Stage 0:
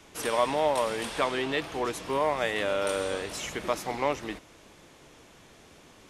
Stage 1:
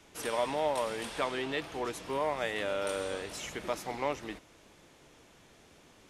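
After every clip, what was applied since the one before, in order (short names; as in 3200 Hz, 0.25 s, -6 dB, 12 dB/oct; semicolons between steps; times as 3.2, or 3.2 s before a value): notch 1100 Hz, Q 29; gain -5 dB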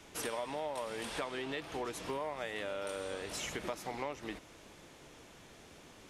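compressor 5:1, threshold -39 dBFS, peak gain reduction 12.5 dB; gain +3 dB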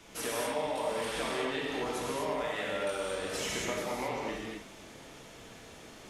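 non-linear reverb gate 0.28 s flat, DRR -4.5 dB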